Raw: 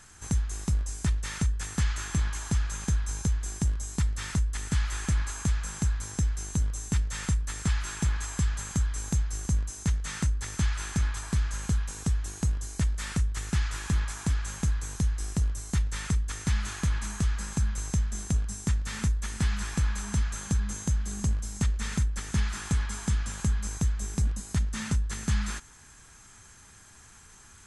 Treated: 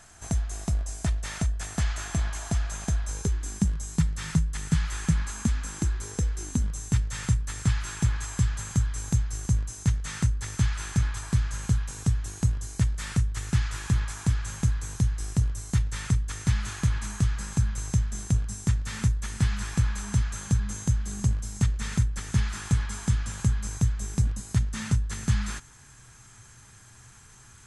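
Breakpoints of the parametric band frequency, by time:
parametric band +13 dB 0.32 octaves
0:03.03 670 Hz
0:03.73 160 Hz
0:05.09 160 Hz
0:06.27 490 Hz
0:06.86 120 Hz

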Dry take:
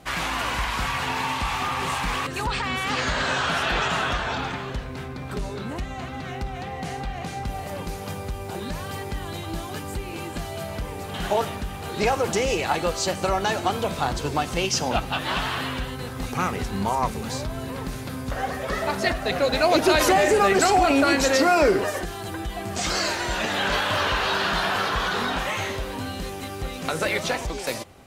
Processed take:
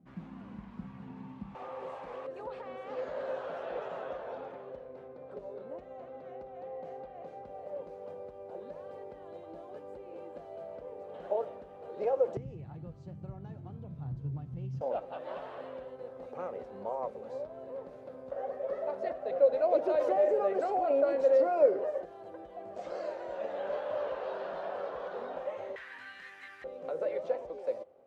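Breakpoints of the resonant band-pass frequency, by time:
resonant band-pass, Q 6
200 Hz
from 0:01.55 530 Hz
from 0:12.37 130 Hz
from 0:14.81 550 Hz
from 0:25.76 1,800 Hz
from 0:26.64 530 Hz

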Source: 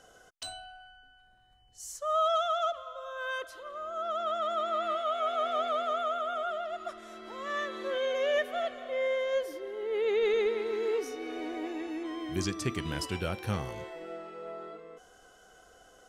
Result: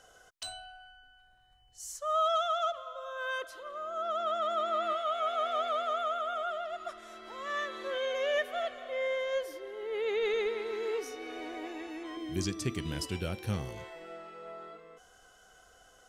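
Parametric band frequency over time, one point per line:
parametric band −7 dB 2 octaves
240 Hz
from 0:02.74 63 Hz
from 0:04.93 230 Hz
from 0:12.17 1,100 Hz
from 0:13.77 340 Hz

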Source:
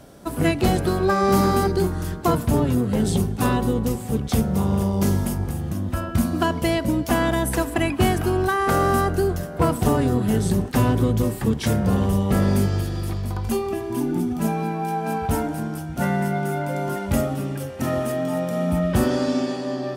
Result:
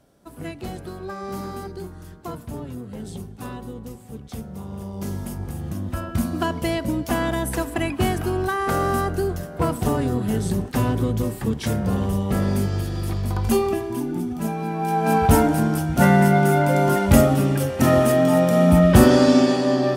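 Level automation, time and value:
0:04.68 −13.5 dB
0:05.67 −2.5 dB
0:12.63 −2.5 dB
0:13.63 +5 dB
0:14.04 −3 dB
0:14.58 −3 dB
0:15.17 +7.5 dB

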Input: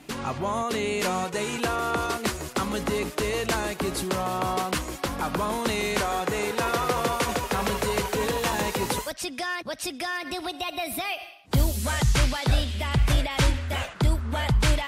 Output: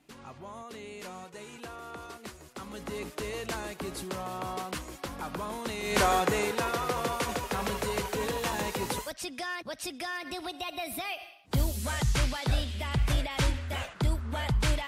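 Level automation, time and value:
0:02.51 −16.5 dB
0:03.04 −9 dB
0:05.81 −9 dB
0:06.04 +3.5 dB
0:06.73 −5.5 dB

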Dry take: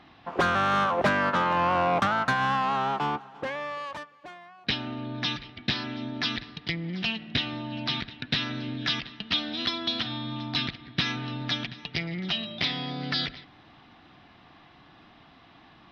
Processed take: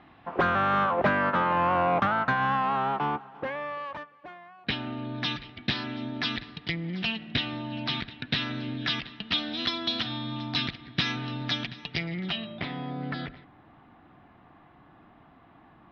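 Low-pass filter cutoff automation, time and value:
0:04.41 2,500 Hz
0:05.16 4,500 Hz
0:09.20 4,500 Hz
0:09.81 7,000 Hz
0:11.82 7,000 Hz
0:12.34 3,100 Hz
0:12.67 1,500 Hz

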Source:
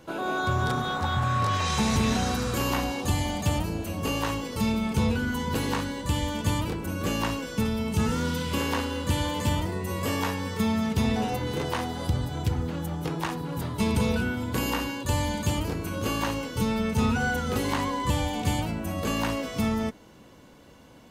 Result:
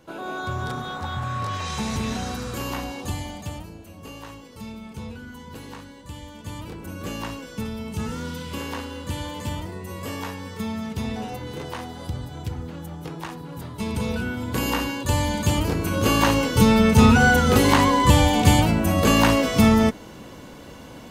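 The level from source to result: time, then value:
0:03.08 −3 dB
0:03.81 −11.5 dB
0:06.37 −11.5 dB
0:06.84 −4 dB
0:13.75 −4 dB
0:14.76 +4 dB
0:15.29 +4 dB
0:16.44 +10.5 dB

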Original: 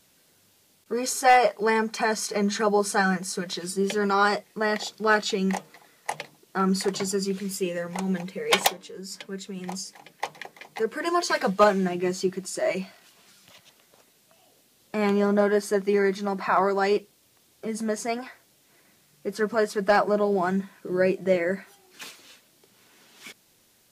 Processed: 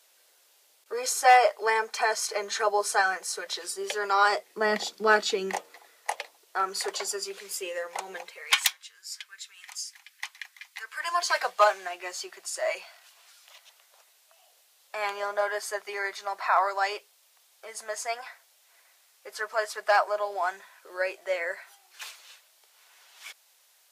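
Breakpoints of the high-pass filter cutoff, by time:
high-pass filter 24 dB per octave
0:04.24 490 Hz
0:04.78 200 Hz
0:06.17 500 Hz
0:08.21 500 Hz
0:08.63 1,400 Hz
0:10.74 1,400 Hz
0:11.27 650 Hz

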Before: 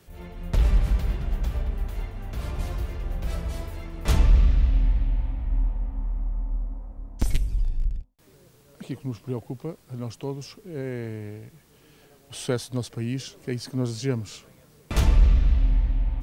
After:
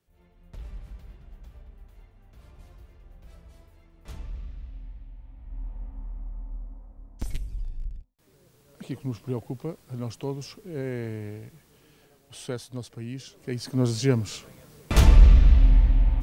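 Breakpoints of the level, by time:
0:05.20 −20 dB
0:05.80 −8.5 dB
0:07.97 −8.5 dB
0:09.04 0 dB
0:11.46 0 dB
0:12.49 −7 dB
0:13.23 −7 dB
0:13.87 +4 dB

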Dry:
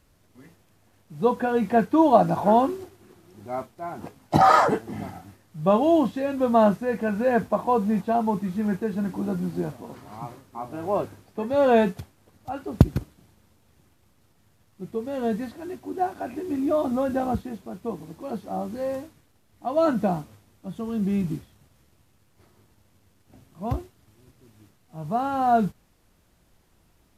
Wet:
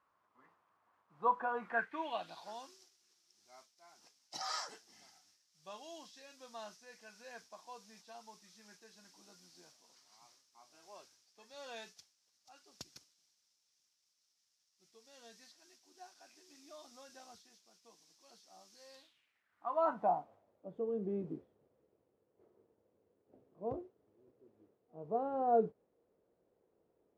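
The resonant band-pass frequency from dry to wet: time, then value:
resonant band-pass, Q 3.9
0:01.58 1,100 Hz
0:02.54 5,500 Hz
0:18.84 5,500 Hz
0:19.66 1,200 Hz
0:20.79 460 Hz

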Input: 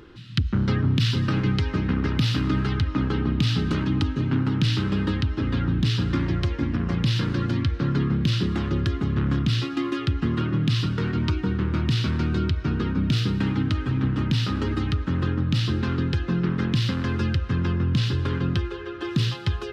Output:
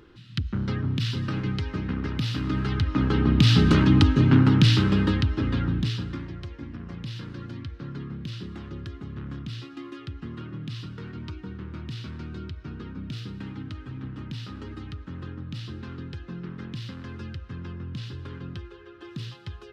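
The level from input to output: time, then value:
0:02.32 −5.5 dB
0:03.61 +6 dB
0:04.41 +6 dB
0:05.76 −2.5 dB
0:06.31 −13 dB

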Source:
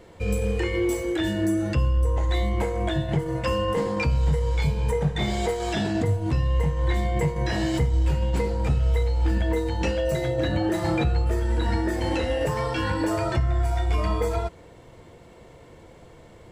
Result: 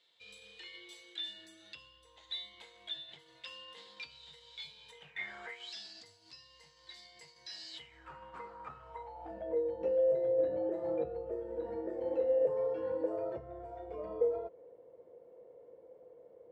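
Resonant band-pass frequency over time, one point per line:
resonant band-pass, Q 7
0:04.93 3,700 Hz
0:05.41 1,300 Hz
0:05.74 4,700 Hz
0:07.69 4,700 Hz
0:08.10 1,200 Hz
0:08.76 1,200 Hz
0:09.60 500 Hz

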